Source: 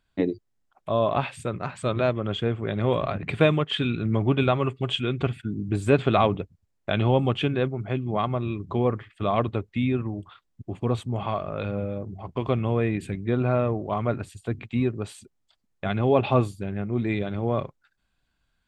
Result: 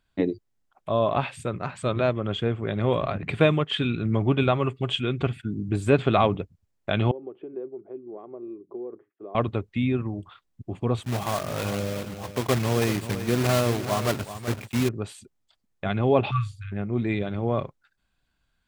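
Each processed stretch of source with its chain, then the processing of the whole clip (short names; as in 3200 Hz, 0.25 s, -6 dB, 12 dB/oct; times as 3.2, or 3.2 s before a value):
7.11–9.35 compressor 10:1, threshold -22 dBFS + ladder band-pass 410 Hz, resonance 65% + mismatched tape noise reduction decoder only
11.03–14.89 block floating point 3-bit + HPF 53 Hz + echo 0.381 s -11.5 dB
16.31–16.72 brick-wall FIR band-stop 150–1100 Hz + air absorption 60 m
whole clip: dry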